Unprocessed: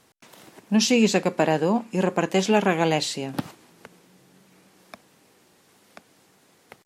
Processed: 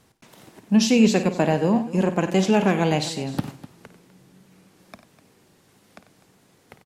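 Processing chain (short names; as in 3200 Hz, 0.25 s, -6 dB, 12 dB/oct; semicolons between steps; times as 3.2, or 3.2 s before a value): low shelf 190 Hz +11.5 dB; tapped delay 53/93/250 ms -13/-14/-16.5 dB; gain -2 dB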